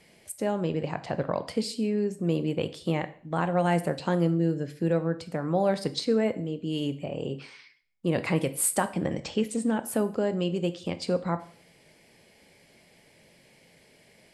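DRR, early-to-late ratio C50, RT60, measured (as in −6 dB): 11.0 dB, 16.0 dB, 0.45 s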